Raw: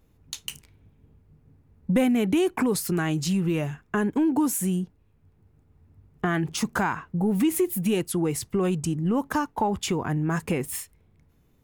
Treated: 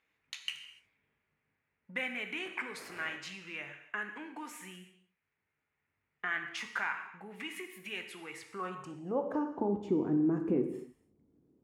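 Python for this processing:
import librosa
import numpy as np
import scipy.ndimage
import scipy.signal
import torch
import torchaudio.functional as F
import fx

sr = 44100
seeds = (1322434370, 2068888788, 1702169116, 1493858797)

y = fx.dmg_wind(x, sr, seeds[0], corner_hz=380.0, level_db=-27.0, at=(2.44, 3.15), fade=0.02)
y = fx.rider(y, sr, range_db=4, speed_s=2.0)
y = fx.filter_sweep_bandpass(y, sr, from_hz=2100.0, to_hz=310.0, start_s=8.3, end_s=9.62, q=2.8)
y = fx.rev_gated(y, sr, seeds[1], gate_ms=320, shape='falling', drr_db=5.0)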